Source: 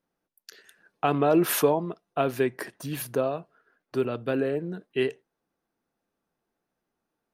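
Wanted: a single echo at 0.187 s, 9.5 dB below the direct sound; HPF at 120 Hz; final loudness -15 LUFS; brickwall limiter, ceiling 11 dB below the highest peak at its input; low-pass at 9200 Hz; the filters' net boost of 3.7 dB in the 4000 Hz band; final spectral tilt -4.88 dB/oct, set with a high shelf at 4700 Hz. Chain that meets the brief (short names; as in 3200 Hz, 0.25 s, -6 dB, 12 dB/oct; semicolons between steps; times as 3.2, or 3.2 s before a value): HPF 120 Hz; LPF 9200 Hz; bell 4000 Hz +6.5 dB; high shelf 4700 Hz -3 dB; limiter -20 dBFS; echo 0.187 s -9.5 dB; gain +16.5 dB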